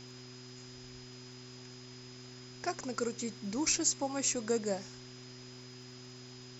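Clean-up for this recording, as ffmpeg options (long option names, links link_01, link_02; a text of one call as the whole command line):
ffmpeg -i in.wav -af "adeclick=threshold=4,bandreject=frequency=125.3:width_type=h:width=4,bandreject=frequency=250.6:width_type=h:width=4,bandreject=frequency=375.9:width_type=h:width=4,bandreject=frequency=5000:width=30,afftdn=noise_reduction=30:noise_floor=-50" out.wav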